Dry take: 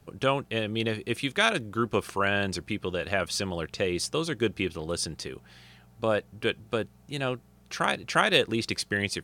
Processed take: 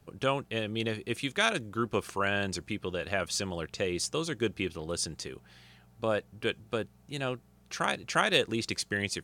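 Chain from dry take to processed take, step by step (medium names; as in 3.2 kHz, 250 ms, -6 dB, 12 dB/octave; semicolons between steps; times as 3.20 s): dynamic bell 7 kHz, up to +6 dB, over -52 dBFS, Q 2.6; trim -3.5 dB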